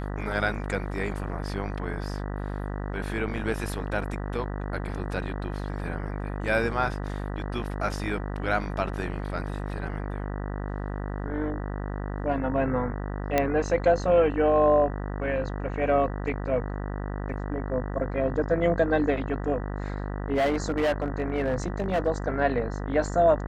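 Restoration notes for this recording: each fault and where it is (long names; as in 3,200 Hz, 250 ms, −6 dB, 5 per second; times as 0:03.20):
mains buzz 50 Hz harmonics 39 −32 dBFS
0:13.38: click −9 dBFS
0:20.35–0:22.08: clipping −20.5 dBFS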